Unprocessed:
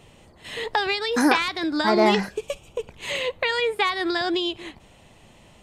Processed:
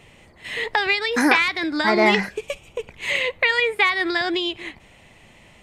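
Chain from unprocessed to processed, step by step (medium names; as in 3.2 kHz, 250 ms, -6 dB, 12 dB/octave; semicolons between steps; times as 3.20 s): peaking EQ 2.1 kHz +9.5 dB 0.63 oct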